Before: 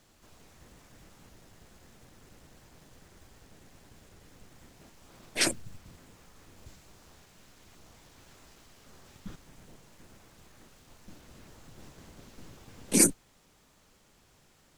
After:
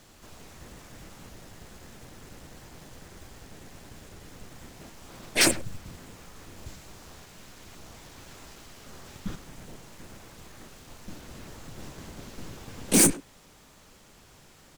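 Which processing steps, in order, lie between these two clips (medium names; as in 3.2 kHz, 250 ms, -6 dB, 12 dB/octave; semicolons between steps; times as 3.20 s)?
overload inside the chain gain 23.5 dB; speakerphone echo 100 ms, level -12 dB; trim +8.5 dB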